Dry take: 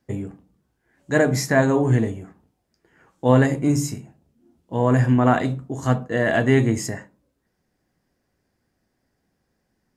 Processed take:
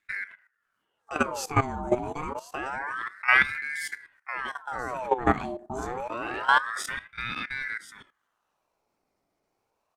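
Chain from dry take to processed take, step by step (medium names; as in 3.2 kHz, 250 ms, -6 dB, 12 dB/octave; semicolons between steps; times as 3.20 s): delay 1034 ms -8.5 dB; level held to a coarse grid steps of 15 dB; ring modulator with a swept carrier 1.2 kHz, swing 60%, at 0.27 Hz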